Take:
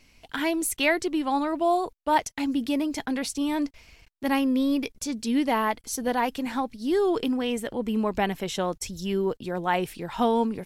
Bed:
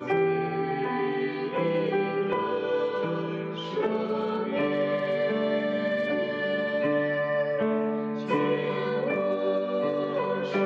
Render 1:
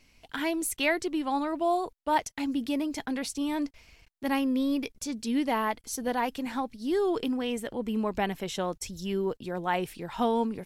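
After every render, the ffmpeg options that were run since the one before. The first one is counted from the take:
-af "volume=0.668"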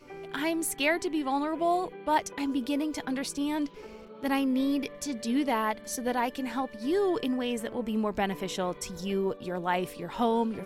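-filter_complex "[1:a]volume=0.112[s0];[0:a][s0]amix=inputs=2:normalize=0"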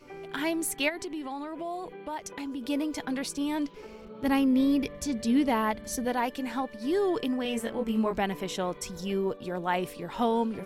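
-filter_complex "[0:a]asplit=3[s0][s1][s2];[s0]afade=t=out:st=0.88:d=0.02[s3];[s1]acompressor=threshold=0.0224:ratio=4:attack=3.2:release=140:knee=1:detection=peak,afade=t=in:st=0.88:d=0.02,afade=t=out:st=2.68:d=0.02[s4];[s2]afade=t=in:st=2.68:d=0.02[s5];[s3][s4][s5]amix=inputs=3:normalize=0,asettb=1/sr,asplit=3[s6][s7][s8];[s6]atrim=end=4.044[s9];[s7]atrim=start=4.04:end=6.05,asetpts=PTS-STARTPTS,afade=t=in:d=0.004:c=qsin,afade=t=out:st=2.006:d=0.004:c=qsin,equalizer=f=63:w=0.45:g=13.5[s10];[s8]atrim=start=6.046[s11];[s9][s10]acrossfade=d=0.004:c1=hsin:c2=qsin[s12];[s12][s11]acrossfade=d=0.004:c1=qsin:c2=hsin,asettb=1/sr,asplit=3[s13][s14][s15];[s13]atrim=end=7.434[s16];[s14]atrim=start=7.43:end=8.18,asetpts=PTS-STARTPTS,afade=t=in:d=0.004:c=qsin,afade=t=out:st=0.746:d=0.004:c=qsin,asplit=2[s17][s18];[s18]adelay=22,volume=0.708[s19];[s17][s19]amix=inputs=2:normalize=0,atrim=end_sample=33075[s20];[s15]atrim=start=8.176[s21];[s16][s20]acrossfade=d=0.004:c1=hsin:c2=qsin[s22];[s22][s21]acrossfade=d=0.004:c1=qsin:c2=hsin"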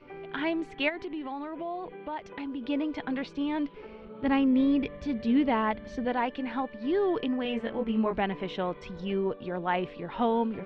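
-af "lowpass=f=3400:w=0.5412,lowpass=f=3400:w=1.3066"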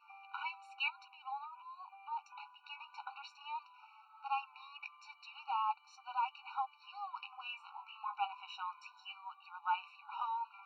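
-af "flanger=delay=5.8:depth=5.3:regen=-56:speed=0.19:shape=sinusoidal,afftfilt=real='re*eq(mod(floor(b*sr/1024/750),2),1)':imag='im*eq(mod(floor(b*sr/1024/750),2),1)':win_size=1024:overlap=0.75"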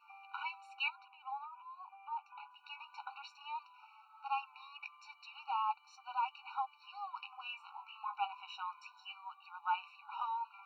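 -filter_complex "[0:a]asettb=1/sr,asplit=3[s0][s1][s2];[s0]atrim=end=0.954[s3];[s1]atrim=start=0.95:end=2.51,asetpts=PTS-STARTPTS,afade=t=in:d=0.004:c=qsin,afade=t=out:st=1.556:d=0.004:c=qsin,lowpass=2700[s4];[s2]atrim=start=2.506[s5];[s3][s4]acrossfade=d=0.004:c1=hsin:c2=qsin[s6];[s6][s5]acrossfade=d=0.004:c1=qsin:c2=hsin"

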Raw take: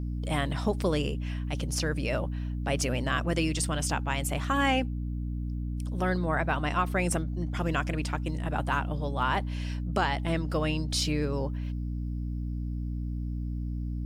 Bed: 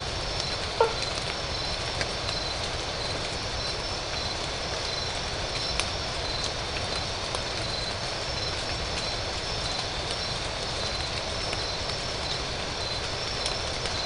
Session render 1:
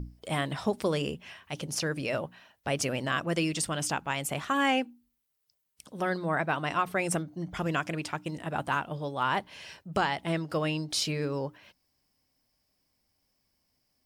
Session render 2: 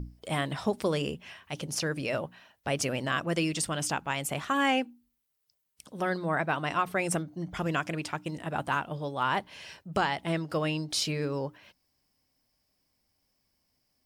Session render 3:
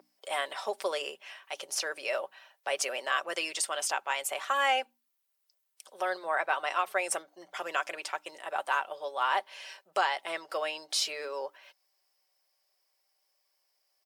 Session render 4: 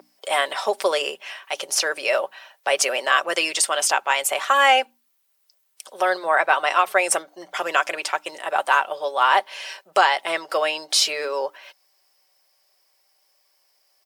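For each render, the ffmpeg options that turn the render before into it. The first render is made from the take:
-af "bandreject=f=60:t=h:w=6,bandreject=f=120:t=h:w=6,bandreject=f=180:t=h:w=6,bandreject=f=240:t=h:w=6,bandreject=f=300:t=h:w=6"
-af anull
-af "highpass=f=510:w=0.5412,highpass=f=510:w=1.3066,aecho=1:1:5.2:0.37"
-af "volume=3.55"

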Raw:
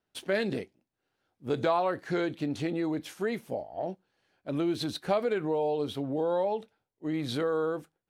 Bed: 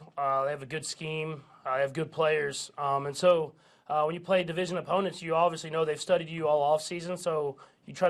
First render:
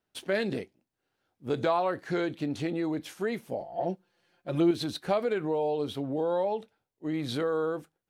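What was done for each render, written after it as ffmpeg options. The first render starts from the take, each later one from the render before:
-filter_complex "[0:a]asettb=1/sr,asplit=3[s0][s1][s2];[s0]atrim=end=3.604[s3];[s1]atrim=start=3.6:end=4.71,asetpts=PTS-STARTPTS,afade=t=in:d=0.004:c=qsin,afade=t=out:st=1.106:d=0.004:c=qsin,aecho=1:1:5.7:0.99,atrim=end_sample=48951[s4];[s2]atrim=start=4.706[s5];[s3][s4]acrossfade=d=0.004:c1=hsin:c2=qsin[s6];[s6][s5]acrossfade=d=0.004:c1=qsin:c2=hsin"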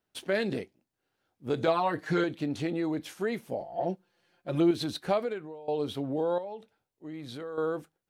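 -filter_complex "[0:a]asettb=1/sr,asplit=3[s0][s1][s2];[s0]atrim=end=1.674[s3];[s1]atrim=start=1.67:end=2.24,asetpts=PTS-STARTPTS,afade=t=in:d=0.004:c=qsin,afade=t=out:st=0.566:d=0.004:c=qsin,aecho=1:1:6.5:0.99,atrim=end_sample=25137[s4];[s2]atrim=start=2.236[s5];[s3][s4]acrossfade=d=0.004:c1=hsin:c2=qsin[s6];[s6][s5]acrossfade=d=0.004:c1=qsin:c2=hsin,asettb=1/sr,asplit=3[s7][s8][s9];[s7]atrim=end=6.384[s10];[s8]atrim=start=6.38:end=7.58,asetpts=PTS-STARTPTS,afade=t=in:d=0.004:c=qsin,afade=t=out:st=1.196:d=0.004:c=qsin,acompressor=threshold=0.002:ratio=1.5:attack=3.2:release=140:knee=1:detection=peak[s11];[s9]atrim=start=7.576[s12];[s10][s11]acrossfade=d=0.004:c1=hsin:c2=qsin[s13];[s13][s12]acrossfade=d=0.004:c1=qsin:c2=hsin,asplit=2[s14][s15];[s14]atrim=end=5.68,asetpts=PTS-STARTPTS,afade=t=out:st=5.16:d=0.52:c=qua:silence=0.11885[s16];[s15]atrim=start=5.68,asetpts=PTS-STARTPTS,afade=t=in:d=0.004:c=hsin:silence=0.11885[s17];[s16][s17]concat=n=2:v=0:a=1"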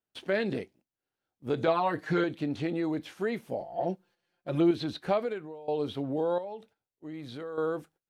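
-filter_complex "[0:a]acrossover=split=4400[s0][s1];[s1]acompressor=threshold=0.00112:ratio=4:attack=1:release=60[s2];[s0][s2]amix=inputs=2:normalize=0,agate=range=0.316:threshold=0.00126:ratio=16:detection=peak"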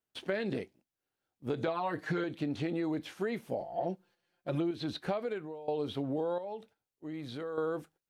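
-af "acompressor=threshold=0.0355:ratio=12"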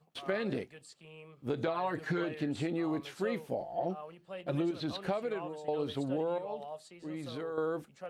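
-filter_complex "[1:a]volume=0.119[s0];[0:a][s0]amix=inputs=2:normalize=0"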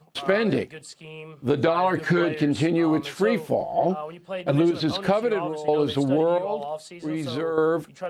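-af "volume=3.98"

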